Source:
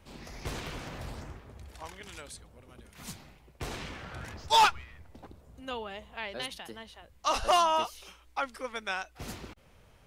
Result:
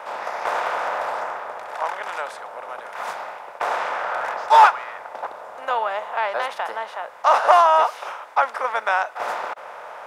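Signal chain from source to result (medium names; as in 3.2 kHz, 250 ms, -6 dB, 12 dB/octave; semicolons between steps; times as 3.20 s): spectral levelling over time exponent 0.6; high-pass 300 Hz 12 dB/octave; high-order bell 1 kHz +15.5 dB 2.5 oct; trim -6 dB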